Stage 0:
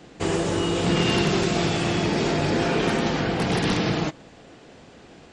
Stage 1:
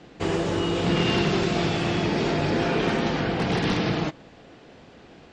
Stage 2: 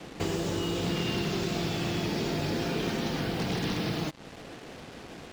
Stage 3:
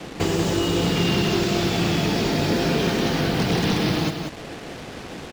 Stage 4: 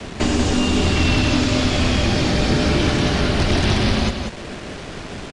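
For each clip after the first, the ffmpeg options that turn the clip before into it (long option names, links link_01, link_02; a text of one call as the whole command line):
ffmpeg -i in.wav -af "lowpass=5200,volume=-1dB" out.wav
ffmpeg -i in.wav -filter_complex "[0:a]acrossover=split=360|3800[link_01][link_02][link_03];[link_01]acompressor=threshold=-35dB:ratio=4[link_04];[link_02]acompressor=threshold=-41dB:ratio=4[link_05];[link_03]acompressor=threshold=-44dB:ratio=4[link_06];[link_04][link_05][link_06]amix=inputs=3:normalize=0,acrusher=bits=7:mix=0:aa=0.5,volume=3.5dB" out.wav
ffmpeg -i in.wav -af "aecho=1:1:187:0.501,volume=8dB" out.wav
ffmpeg -i in.wav -af "afreqshift=-92,aresample=22050,aresample=44100,volume=4dB" out.wav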